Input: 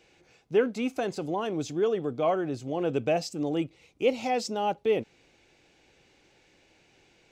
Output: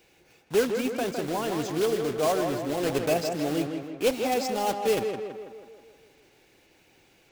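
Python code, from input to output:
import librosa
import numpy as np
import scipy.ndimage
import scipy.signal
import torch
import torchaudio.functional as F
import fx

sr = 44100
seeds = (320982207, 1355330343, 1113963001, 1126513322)

p1 = fx.block_float(x, sr, bits=3)
y = p1 + fx.echo_tape(p1, sr, ms=161, feedback_pct=60, wet_db=-4.5, lp_hz=2700.0, drive_db=15.0, wow_cents=36, dry=0)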